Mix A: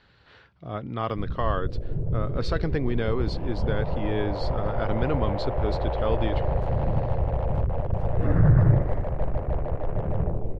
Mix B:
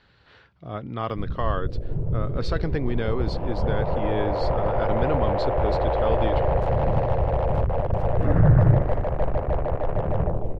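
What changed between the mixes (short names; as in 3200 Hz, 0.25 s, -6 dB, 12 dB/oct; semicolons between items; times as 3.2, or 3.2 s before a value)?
first sound: send +7.0 dB; second sound +6.5 dB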